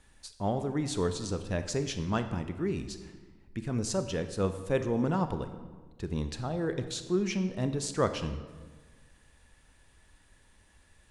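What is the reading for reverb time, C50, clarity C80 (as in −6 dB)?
1.4 s, 10.5 dB, 12.0 dB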